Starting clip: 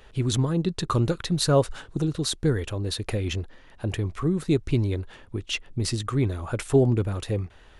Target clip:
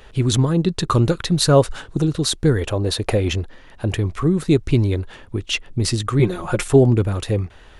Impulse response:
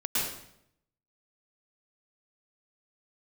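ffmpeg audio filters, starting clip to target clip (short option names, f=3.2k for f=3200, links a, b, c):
-filter_complex "[0:a]asettb=1/sr,asplit=3[a][b][c];[a]atrim=end=2.614[d];[b]atrim=start=2.61:end=3.32,asetpts=PTS-STARTPTS,afade=t=in:d=0.004:c=qsin,afade=t=out:st=0.706:d=0.004:c=qsin,equalizer=f=660:t=o:w=1.5:g=7[e];[c]atrim=start=3.316[f];[d][e]acrossfade=d=0.004:c1=hsin:c2=qsin[g];[g][f]acrossfade=d=0.004:c1=qsin:c2=hsin,asettb=1/sr,asplit=3[h][i][j];[h]atrim=end=6.194[k];[i]atrim=start=6.19:end=6.68,asetpts=PTS-STARTPTS,afade=t=in:d=0.004:c=qsin,afade=t=out:st=0.486:d=0.004:c=qsin,aecho=1:1:5.6:0.94,atrim=end_sample=21609[l];[j]atrim=start=6.676[m];[k][l]acrossfade=d=0.004:c1=hsin:c2=qsin[n];[n][m]acrossfade=d=0.004:c1=qsin:c2=hsin,volume=6.5dB"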